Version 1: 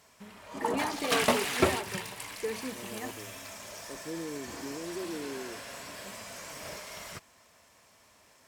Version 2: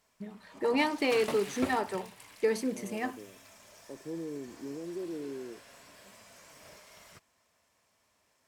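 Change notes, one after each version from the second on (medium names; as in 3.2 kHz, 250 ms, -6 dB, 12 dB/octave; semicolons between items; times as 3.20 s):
first voice +7.0 dB; background -11.5 dB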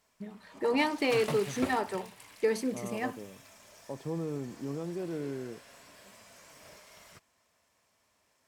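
second voice: remove band-pass filter 350 Hz, Q 2.1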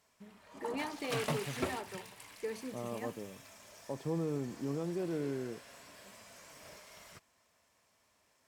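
first voice -11.5 dB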